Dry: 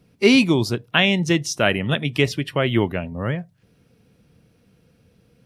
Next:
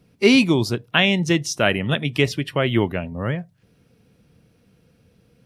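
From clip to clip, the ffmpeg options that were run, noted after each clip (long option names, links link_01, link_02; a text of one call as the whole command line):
ffmpeg -i in.wav -af anull out.wav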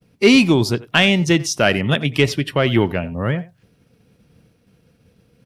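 ffmpeg -i in.wav -filter_complex "[0:a]acontrast=39,asplit=2[link_01][link_02];[link_02]adelay=90,highpass=300,lowpass=3400,asoftclip=type=hard:threshold=-10dB,volume=-18dB[link_03];[link_01][link_03]amix=inputs=2:normalize=0,agate=range=-33dB:threshold=-48dB:ratio=3:detection=peak,volume=-1.5dB" out.wav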